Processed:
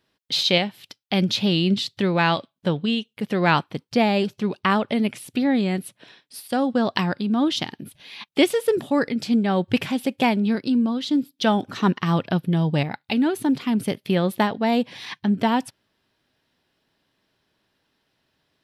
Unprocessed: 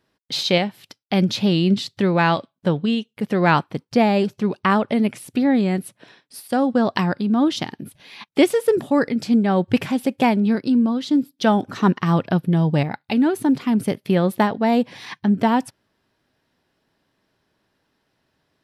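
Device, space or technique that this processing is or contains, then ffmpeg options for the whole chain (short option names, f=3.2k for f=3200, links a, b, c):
presence and air boost: -af "equalizer=f=3.3k:t=o:w=1.2:g=6,highshelf=f=11k:g=4.5,volume=-3dB"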